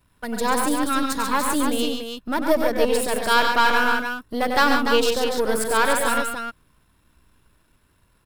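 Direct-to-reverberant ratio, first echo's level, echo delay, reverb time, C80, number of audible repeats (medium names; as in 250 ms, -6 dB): no reverb, -7.5 dB, 95 ms, no reverb, no reverb, 3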